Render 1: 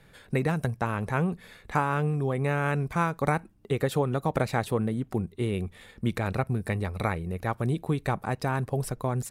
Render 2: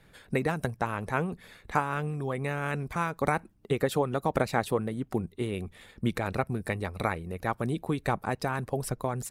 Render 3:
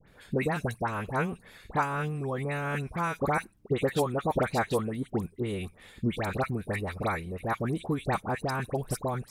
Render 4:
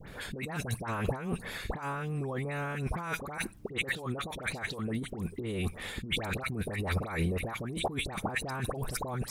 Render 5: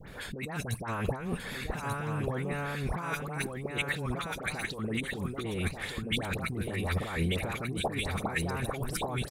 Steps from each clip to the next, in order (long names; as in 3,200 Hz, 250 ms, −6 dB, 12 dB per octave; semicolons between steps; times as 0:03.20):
harmonic and percussive parts rebalanced percussive +7 dB; level −6 dB
all-pass dispersion highs, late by 78 ms, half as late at 1,700 Hz
compressor whose output falls as the input rises −39 dBFS, ratio −1; level +4 dB
single-tap delay 1,188 ms −4.5 dB